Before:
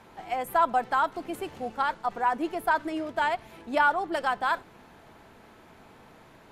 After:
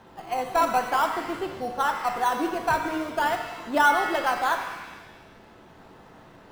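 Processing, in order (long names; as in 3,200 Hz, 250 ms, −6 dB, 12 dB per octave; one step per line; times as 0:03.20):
low-pass filter 5,100 Hz
notch filter 2,300 Hz, Q 8.6
in parallel at −9.5 dB: sample-and-hold swept by an LFO 18×, swing 100% 0.44 Hz
on the sum: reverb with rising layers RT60 1.2 s, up +7 semitones, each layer −8 dB, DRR 5 dB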